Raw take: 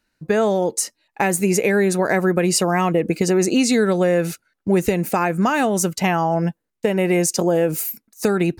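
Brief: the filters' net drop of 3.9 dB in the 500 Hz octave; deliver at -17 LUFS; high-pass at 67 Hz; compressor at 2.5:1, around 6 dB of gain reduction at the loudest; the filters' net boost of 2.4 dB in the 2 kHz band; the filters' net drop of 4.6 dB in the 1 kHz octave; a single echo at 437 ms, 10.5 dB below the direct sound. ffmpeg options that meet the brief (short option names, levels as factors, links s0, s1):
-af "highpass=67,equalizer=f=500:t=o:g=-4,equalizer=f=1000:t=o:g=-6,equalizer=f=2000:t=o:g=5,acompressor=threshold=0.0631:ratio=2.5,aecho=1:1:437:0.299,volume=2.66"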